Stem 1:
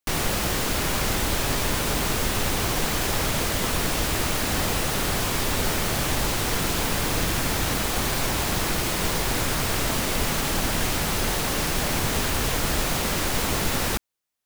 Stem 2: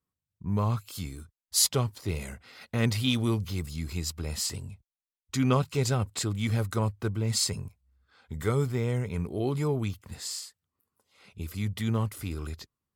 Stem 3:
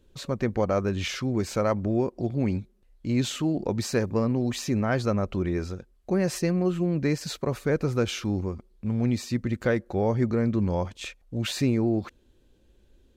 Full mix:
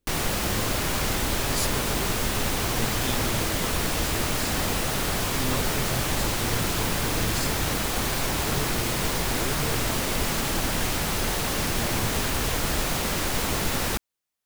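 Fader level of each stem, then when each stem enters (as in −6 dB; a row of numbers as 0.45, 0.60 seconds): −1.5, −7.5, −16.5 decibels; 0.00, 0.00, 0.00 seconds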